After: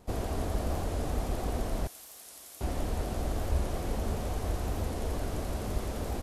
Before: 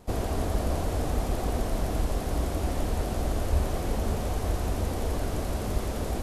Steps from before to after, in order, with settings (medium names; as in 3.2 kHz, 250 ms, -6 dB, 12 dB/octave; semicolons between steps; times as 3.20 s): 1.87–2.61 s: differentiator; warped record 45 rpm, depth 100 cents; trim -4 dB